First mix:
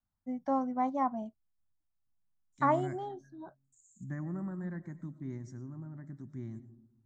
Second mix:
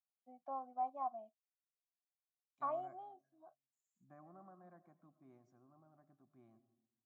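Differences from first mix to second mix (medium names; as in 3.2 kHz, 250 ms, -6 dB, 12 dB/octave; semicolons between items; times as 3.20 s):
first voice -3.5 dB; master: add vowel filter a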